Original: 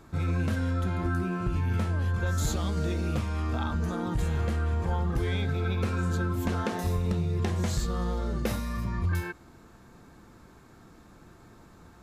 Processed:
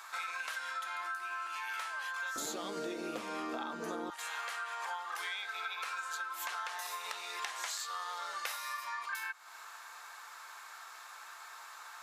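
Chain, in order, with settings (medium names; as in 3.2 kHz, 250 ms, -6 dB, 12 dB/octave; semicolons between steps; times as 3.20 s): high-pass 1 kHz 24 dB/octave, from 2.36 s 300 Hz, from 4.10 s 960 Hz; compression 10:1, threshold -48 dBFS, peak gain reduction 17.5 dB; trim +11.5 dB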